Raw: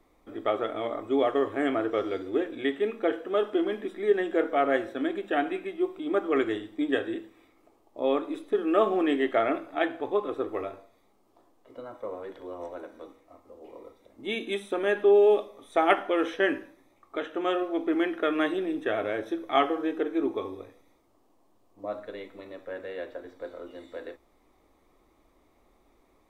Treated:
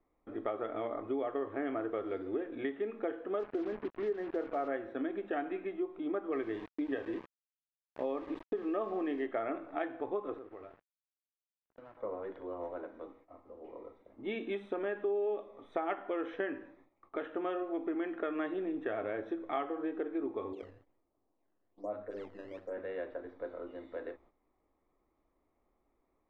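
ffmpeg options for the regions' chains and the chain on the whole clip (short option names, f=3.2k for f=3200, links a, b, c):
-filter_complex "[0:a]asettb=1/sr,asplit=3[a][b][c];[a]atrim=end=3.394[d];[b]atrim=start=3.39:end=4.68,asetpts=PTS-STARTPTS,afade=t=in:d=0.004:c=qsin,afade=t=out:st=1.286:d=0.004:c=qsin,lowpass=1.6k,acrusher=bits=5:mix=0:aa=0.5[e];[c]atrim=start=4.676[f];[d][e]acrossfade=d=0.004:c1=hsin:c2=qsin[g];[g][f]acrossfade=d=0.004:c1=qsin:c2=hsin,asettb=1/sr,asplit=3[h][i][j];[h]atrim=end=6.324[k];[i]atrim=start=6.32:end=9.26,asetpts=PTS-STARTPTS,afade=t=in:d=0.004:c=qsin,afade=t=out:st=2.936:d=0.004:c=qsin,aecho=1:1:145:0.1,atrim=end_sample=129654,aeval=exprs='val(0)*gte(abs(val(0)),0.0126)':c=same,asuperstop=centerf=1400:order=4:qfactor=7.9[l];[j]atrim=start=9.256[m];[k][l]acrossfade=d=0.004:c1=hsin:c2=qsin[n];[n][m]acrossfade=d=0.004:c1=qsin:c2=hsin,asettb=1/sr,asplit=3[o][p][q];[o]atrim=end=10.384[r];[p]atrim=start=10.38:end=11.97,asetpts=PTS-STARTPTS,afade=t=in:d=0.004:c=qsin,afade=t=out:st=1.586:d=0.004:c=qsin,aeval=exprs='sgn(val(0))*max(abs(val(0))-0.00531,0)':c=same,acompressor=threshold=-47dB:ratio=3:attack=3.2:release=140:knee=1:detection=peak[s];[q]atrim=start=11.966[t];[r][s]acrossfade=d=0.004:c1=hsin:c2=qsin[u];[u][t]acrossfade=d=0.004:c1=qsin:c2=hsin,asettb=1/sr,asplit=3[v][w][x];[v]atrim=end=20.534[y];[w]atrim=start=20.53:end=22.78,asetpts=PTS-STARTPTS,afade=t=in:d=0.004:c=qsin,afade=t=out:st=2.246:d=0.004:c=qsin,highshelf=f=3.3k:g=-9.5,acrossover=split=170|1200[z][aa][ab];[ab]adelay=30[ac];[z]adelay=90[ad];[ad][aa][ac]amix=inputs=3:normalize=0,atrim=end_sample=99225,acrusher=samples=11:mix=1:aa=0.000001:lfo=1:lforange=17.6:lforate=1.2[ae];[x]atrim=start=22.776[af];[y][ae]acrossfade=d=0.004:c1=hsin:c2=qsin[ag];[ag][af]acrossfade=d=0.004:c1=qsin:c2=hsin,lowpass=2k,agate=range=-11dB:threshold=-59dB:ratio=16:detection=peak,acompressor=threshold=-31dB:ratio=4,volume=-2dB"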